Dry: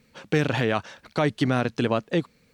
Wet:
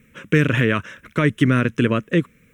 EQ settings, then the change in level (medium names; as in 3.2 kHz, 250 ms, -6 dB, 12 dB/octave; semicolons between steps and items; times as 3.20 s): static phaser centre 1.9 kHz, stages 4; +8.0 dB